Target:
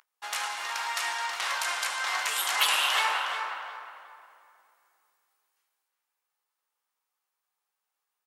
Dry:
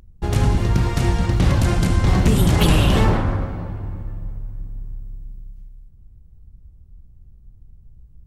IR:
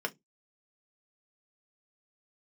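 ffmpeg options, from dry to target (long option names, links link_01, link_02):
-filter_complex "[0:a]highpass=frequency=970:width=0.5412,highpass=frequency=970:width=1.3066,asplit=2[link_01][link_02];[link_02]adelay=362,lowpass=frequency=3100:poles=1,volume=-6dB,asplit=2[link_03][link_04];[link_04]adelay=362,lowpass=frequency=3100:poles=1,volume=0.29,asplit=2[link_05][link_06];[link_06]adelay=362,lowpass=frequency=3100:poles=1,volume=0.29,asplit=2[link_07][link_08];[link_08]adelay=362,lowpass=frequency=3100:poles=1,volume=0.29[link_09];[link_01][link_03][link_05][link_07][link_09]amix=inputs=5:normalize=0,asplit=2[link_10][link_11];[1:a]atrim=start_sample=2205,adelay=14[link_12];[link_11][link_12]afir=irnorm=-1:irlink=0,volume=-12.5dB[link_13];[link_10][link_13]amix=inputs=2:normalize=0"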